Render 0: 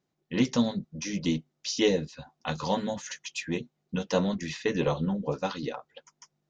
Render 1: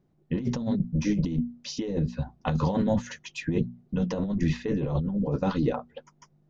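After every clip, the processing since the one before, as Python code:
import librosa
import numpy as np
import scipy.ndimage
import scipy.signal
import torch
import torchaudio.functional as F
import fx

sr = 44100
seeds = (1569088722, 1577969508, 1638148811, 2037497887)

y = fx.tilt_eq(x, sr, slope=-4.0)
y = fx.hum_notches(y, sr, base_hz=60, count=4)
y = fx.over_compress(y, sr, threshold_db=-26.0, ratio=-1.0)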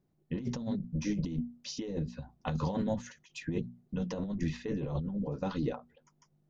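y = fx.high_shelf(x, sr, hz=4400.0, db=5.0)
y = fx.end_taper(y, sr, db_per_s=200.0)
y = F.gain(torch.from_numpy(y), -7.0).numpy()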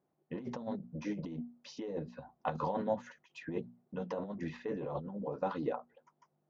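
y = fx.bandpass_q(x, sr, hz=830.0, q=0.99)
y = F.gain(torch.from_numpy(y), 4.5).numpy()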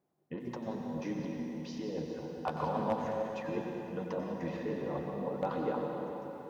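y = 10.0 ** (-22.0 / 20.0) * (np.abs((x / 10.0 ** (-22.0 / 20.0) + 3.0) % 4.0 - 2.0) - 1.0)
y = fx.rev_plate(y, sr, seeds[0], rt60_s=3.8, hf_ratio=0.8, predelay_ms=90, drr_db=0.5)
y = fx.echo_crushed(y, sr, ms=90, feedback_pct=35, bits=10, wet_db=-14)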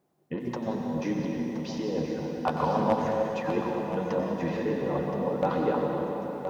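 y = x + 10.0 ** (-9.5 / 20.0) * np.pad(x, (int(1022 * sr / 1000.0), 0))[:len(x)]
y = F.gain(torch.from_numpy(y), 7.5).numpy()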